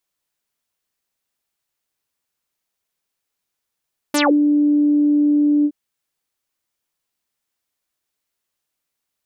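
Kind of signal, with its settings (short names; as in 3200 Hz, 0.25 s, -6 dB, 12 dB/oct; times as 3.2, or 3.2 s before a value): synth note saw D4 24 dB/oct, low-pass 350 Hz, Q 8.2, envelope 5.5 oct, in 0.17 s, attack 4.8 ms, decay 0.24 s, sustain -4.5 dB, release 0.06 s, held 1.51 s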